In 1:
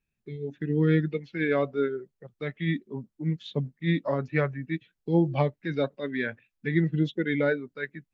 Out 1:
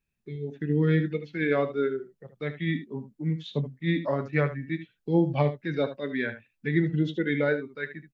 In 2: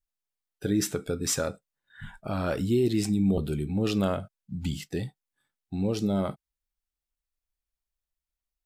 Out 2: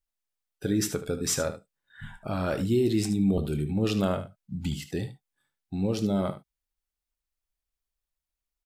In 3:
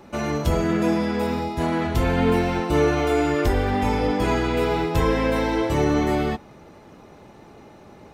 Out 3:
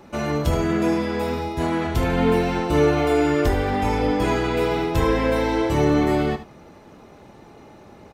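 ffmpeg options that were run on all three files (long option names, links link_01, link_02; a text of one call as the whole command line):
ffmpeg -i in.wav -af "aecho=1:1:27|75:0.168|0.251" out.wav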